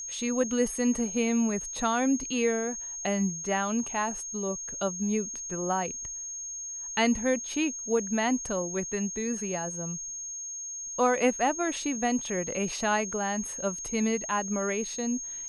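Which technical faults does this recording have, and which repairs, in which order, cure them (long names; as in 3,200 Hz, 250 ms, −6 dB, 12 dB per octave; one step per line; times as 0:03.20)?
whistle 6,500 Hz −35 dBFS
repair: notch filter 6,500 Hz, Q 30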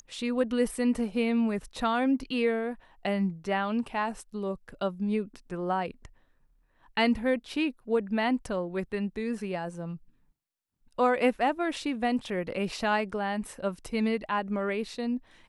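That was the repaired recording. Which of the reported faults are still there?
none of them is left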